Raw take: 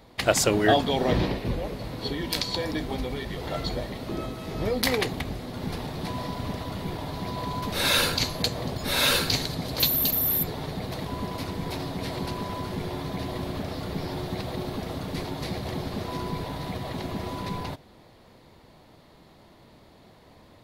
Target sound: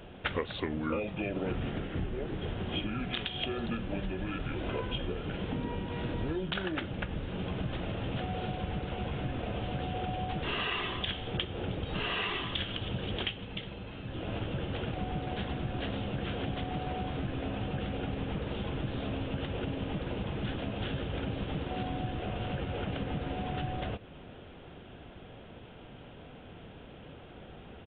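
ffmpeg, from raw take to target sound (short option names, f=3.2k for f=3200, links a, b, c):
-af "acompressor=threshold=-36dB:ratio=6,aresample=11025,aresample=44100,asetrate=32667,aresample=44100,volume=4.5dB"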